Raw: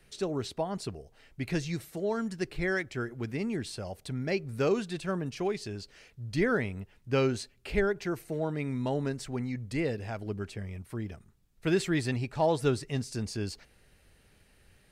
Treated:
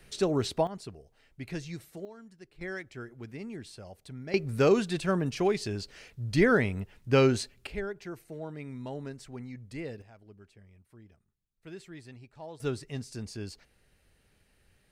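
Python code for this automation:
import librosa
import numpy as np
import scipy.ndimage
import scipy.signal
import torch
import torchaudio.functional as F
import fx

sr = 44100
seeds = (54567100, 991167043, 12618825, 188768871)

y = fx.gain(x, sr, db=fx.steps((0.0, 5.0), (0.67, -6.0), (2.05, -18.0), (2.61, -8.0), (4.34, 4.5), (7.67, -8.0), (10.02, -18.0), (12.6, -5.0)))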